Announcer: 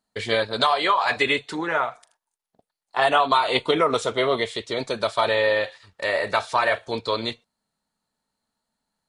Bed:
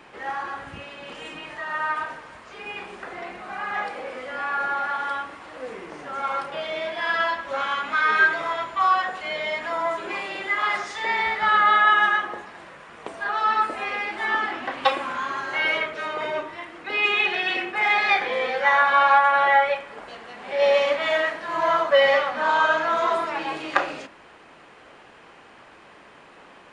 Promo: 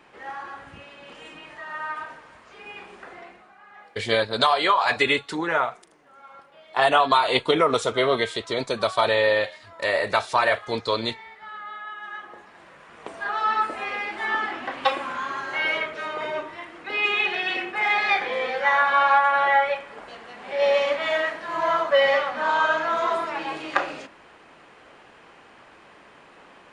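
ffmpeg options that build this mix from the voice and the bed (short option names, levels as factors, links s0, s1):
-filter_complex "[0:a]adelay=3800,volume=1.06[s0];[1:a]volume=4.47,afade=t=out:st=3.09:d=0.45:silence=0.188365,afade=t=in:st=12.02:d=1.14:silence=0.11885[s1];[s0][s1]amix=inputs=2:normalize=0"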